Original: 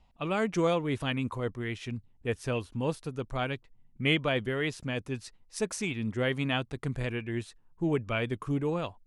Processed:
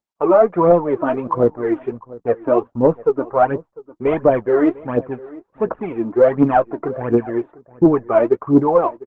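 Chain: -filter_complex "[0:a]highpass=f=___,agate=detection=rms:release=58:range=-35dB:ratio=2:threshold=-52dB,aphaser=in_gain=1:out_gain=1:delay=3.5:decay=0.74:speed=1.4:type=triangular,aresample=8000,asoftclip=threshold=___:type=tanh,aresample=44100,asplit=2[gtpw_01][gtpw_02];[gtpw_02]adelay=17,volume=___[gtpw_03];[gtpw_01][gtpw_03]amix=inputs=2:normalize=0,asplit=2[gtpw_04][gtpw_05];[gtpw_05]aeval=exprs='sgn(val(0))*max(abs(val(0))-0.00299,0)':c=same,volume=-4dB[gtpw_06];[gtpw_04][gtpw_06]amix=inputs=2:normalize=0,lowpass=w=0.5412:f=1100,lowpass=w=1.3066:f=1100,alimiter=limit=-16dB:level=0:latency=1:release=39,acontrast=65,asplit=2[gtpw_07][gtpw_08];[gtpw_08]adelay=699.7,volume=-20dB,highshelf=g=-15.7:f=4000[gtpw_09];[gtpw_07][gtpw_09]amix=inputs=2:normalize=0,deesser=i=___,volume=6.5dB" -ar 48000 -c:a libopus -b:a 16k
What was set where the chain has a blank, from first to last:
330, -16dB, -13.5dB, 0.3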